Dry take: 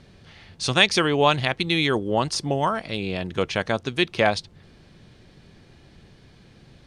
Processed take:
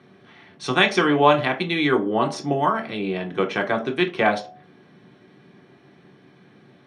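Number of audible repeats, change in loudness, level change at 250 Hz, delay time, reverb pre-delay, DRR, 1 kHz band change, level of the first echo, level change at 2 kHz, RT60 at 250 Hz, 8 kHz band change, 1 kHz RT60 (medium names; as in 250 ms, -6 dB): no echo, +1.0 dB, +3.0 dB, no echo, 3 ms, 0.5 dB, +3.5 dB, no echo, +1.0 dB, 0.35 s, -8.0 dB, 0.40 s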